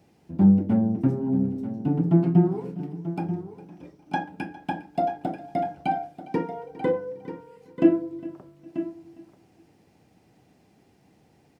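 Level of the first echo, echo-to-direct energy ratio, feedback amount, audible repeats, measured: −19.0 dB, −11.0 dB, repeats not evenly spaced, 4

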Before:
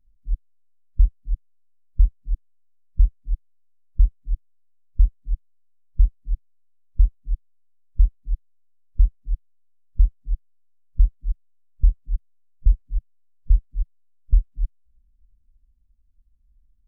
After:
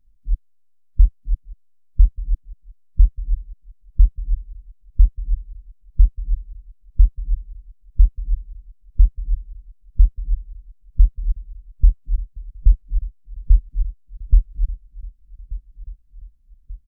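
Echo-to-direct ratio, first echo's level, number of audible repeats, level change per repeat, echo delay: −15.5 dB, −17.0 dB, 3, −5.5 dB, 1,185 ms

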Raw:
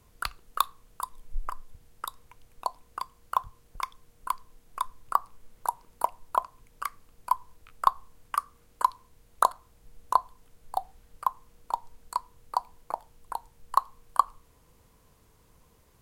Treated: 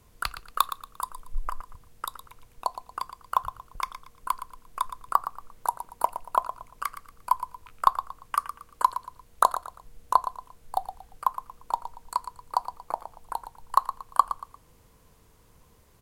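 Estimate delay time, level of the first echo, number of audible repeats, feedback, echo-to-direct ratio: 116 ms, −11.5 dB, 3, 31%, −11.0 dB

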